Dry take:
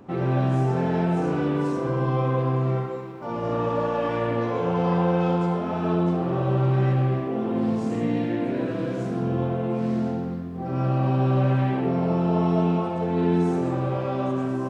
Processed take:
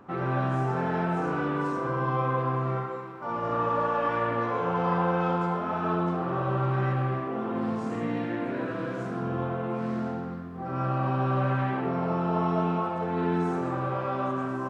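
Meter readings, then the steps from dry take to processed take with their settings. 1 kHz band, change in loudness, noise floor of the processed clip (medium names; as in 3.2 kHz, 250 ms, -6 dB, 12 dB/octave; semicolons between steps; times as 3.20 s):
+1.0 dB, -4.0 dB, -35 dBFS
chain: peaking EQ 1.3 kHz +11.5 dB 1.3 oct; trim -6.5 dB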